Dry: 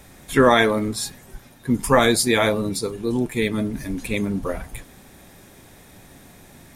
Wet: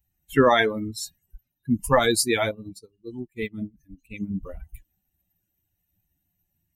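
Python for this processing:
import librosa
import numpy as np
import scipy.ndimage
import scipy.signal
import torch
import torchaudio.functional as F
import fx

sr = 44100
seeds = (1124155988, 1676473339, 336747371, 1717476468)

y = fx.bin_expand(x, sr, power=2.0)
y = fx.upward_expand(y, sr, threshold_db=-38.0, expansion=2.5, at=(2.51, 4.31))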